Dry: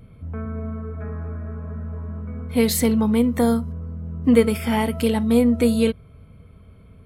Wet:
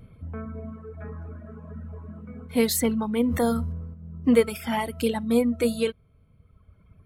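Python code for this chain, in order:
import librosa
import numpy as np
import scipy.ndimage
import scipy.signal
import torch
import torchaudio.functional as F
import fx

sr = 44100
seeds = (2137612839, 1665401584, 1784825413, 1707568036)

y = fx.dereverb_blind(x, sr, rt60_s=1.9)
y = fx.dynamic_eq(y, sr, hz=120.0, q=0.88, threshold_db=-34.0, ratio=4.0, max_db=-4)
y = fx.sustainer(y, sr, db_per_s=37.0, at=(3.2, 3.94))
y = y * 10.0 ** (-2.0 / 20.0)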